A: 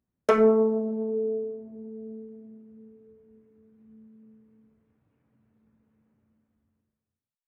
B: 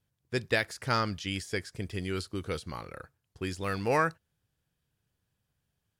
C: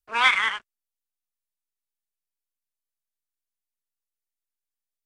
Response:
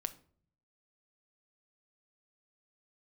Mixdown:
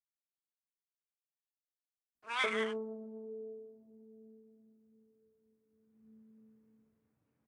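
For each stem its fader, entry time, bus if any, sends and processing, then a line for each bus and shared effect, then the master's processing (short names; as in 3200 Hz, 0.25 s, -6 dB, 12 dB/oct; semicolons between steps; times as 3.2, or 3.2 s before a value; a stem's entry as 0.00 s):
5.63 s -17 dB -> 6.12 s -7.5 dB, 2.15 s, no send, dry
off
-15.5 dB, 2.15 s, no send, high shelf 8400 Hz +10 dB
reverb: off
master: low shelf 77 Hz -9 dB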